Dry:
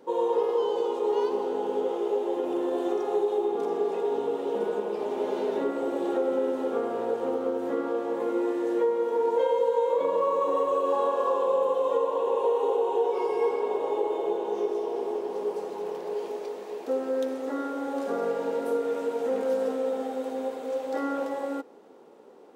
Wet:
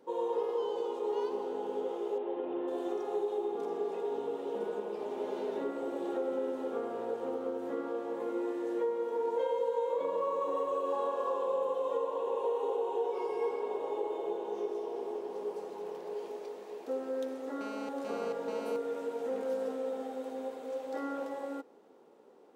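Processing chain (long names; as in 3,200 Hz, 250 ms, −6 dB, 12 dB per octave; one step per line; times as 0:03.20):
0:02.18–0:02.68: low-pass filter 3,200 Hz 24 dB per octave
0:17.61–0:18.76: phone interference −38 dBFS
level −7.5 dB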